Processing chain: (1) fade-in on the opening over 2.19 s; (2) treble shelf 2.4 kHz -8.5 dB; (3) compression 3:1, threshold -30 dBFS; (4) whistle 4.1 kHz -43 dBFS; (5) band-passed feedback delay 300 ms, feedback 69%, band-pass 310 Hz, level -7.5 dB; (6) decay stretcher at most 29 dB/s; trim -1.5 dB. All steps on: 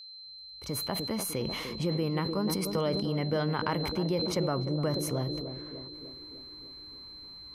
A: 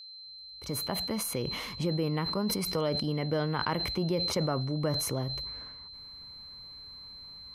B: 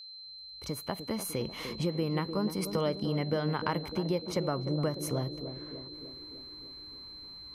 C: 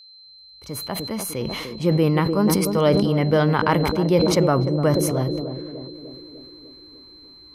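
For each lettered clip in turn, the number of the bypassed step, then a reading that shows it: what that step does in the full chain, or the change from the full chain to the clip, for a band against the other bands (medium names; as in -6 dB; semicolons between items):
5, 4 kHz band +3.0 dB; 6, 8 kHz band -2.0 dB; 3, mean gain reduction 7.5 dB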